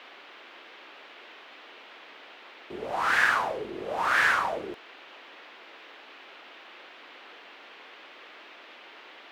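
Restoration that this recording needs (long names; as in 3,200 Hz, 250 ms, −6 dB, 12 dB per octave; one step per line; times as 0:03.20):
noise reduction from a noise print 25 dB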